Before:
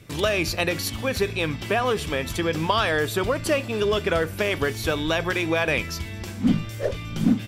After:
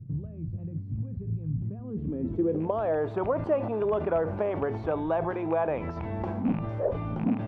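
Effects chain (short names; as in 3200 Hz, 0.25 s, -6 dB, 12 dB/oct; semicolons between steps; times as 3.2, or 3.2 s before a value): rattling part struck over -24 dBFS, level -14 dBFS; low shelf 75 Hz -10.5 dB; in parallel at +1 dB: negative-ratio compressor -35 dBFS, ratio -1; on the sum: low-pass sweep 140 Hz -> 840 Hz, 1.63–3.06; gain -7 dB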